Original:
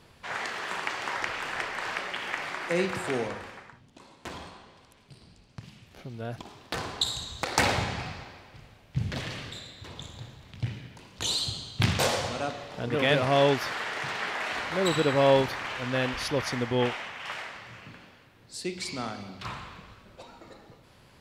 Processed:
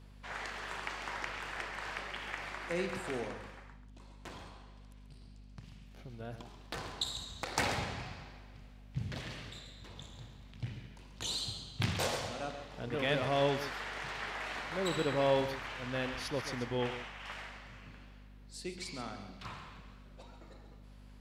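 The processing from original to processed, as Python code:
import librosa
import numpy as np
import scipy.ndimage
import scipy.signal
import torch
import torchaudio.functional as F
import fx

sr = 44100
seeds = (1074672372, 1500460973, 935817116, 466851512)

p1 = fx.add_hum(x, sr, base_hz=50, snr_db=15)
p2 = p1 + fx.echo_single(p1, sr, ms=136, db=-11.5, dry=0)
y = p2 * 10.0 ** (-8.5 / 20.0)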